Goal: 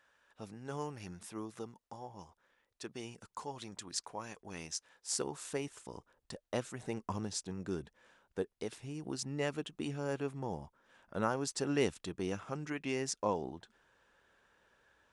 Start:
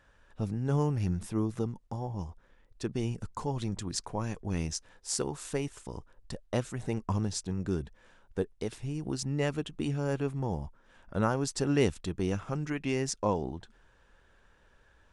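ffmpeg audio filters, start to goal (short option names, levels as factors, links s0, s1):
-af "asetnsamples=n=441:p=0,asendcmd='5.11 highpass f 280',highpass=f=810:p=1,volume=0.708"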